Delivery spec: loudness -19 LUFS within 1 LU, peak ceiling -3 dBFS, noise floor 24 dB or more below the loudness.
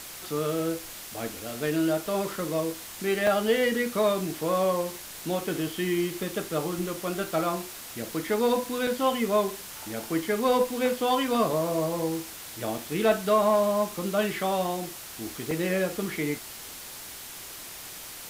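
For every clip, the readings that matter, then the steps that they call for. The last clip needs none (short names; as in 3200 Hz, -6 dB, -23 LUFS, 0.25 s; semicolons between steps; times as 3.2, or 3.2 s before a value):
dropouts 7; longest dropout 2.6 ms; noise floor -42 dBFS; noise floor target -52 dBFS; loudness -28.0 LUFS; peak -11.0 dBFS; loudness target -19.0 LUFS
-> interpolate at 0.79/3.27/8.03/8.87/9.48/12.78/15.51, 2.6 ms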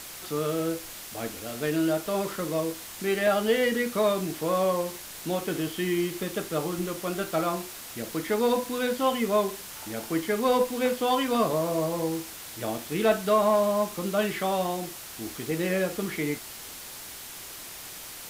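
dropouts 0; noise floor -42 dBFS; noise floor target -52 dBFS
-> denoiser 10 dB, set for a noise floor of -42 dBFS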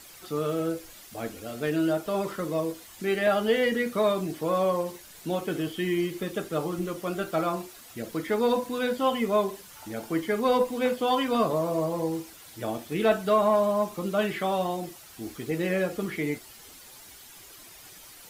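noise floor -49 dBFS; noise floor target -52 dBFS
-> denoiser 6 dB, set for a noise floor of -49 dBFS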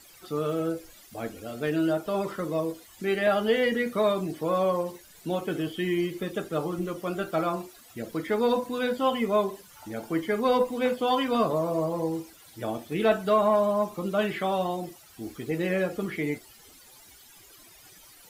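noise floor -53 dBFS; loudness -28.0 LUFS; peak -11.0 dBFS; loudness target -19.0 LUFS
-> gain +9 dB; limiter -3 dBFS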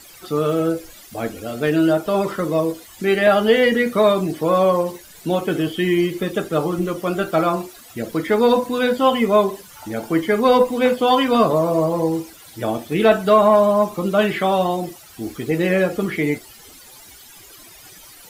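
loudness -19.0 LUFS; peak -3.0 dBFS; noise floor -44 dBFS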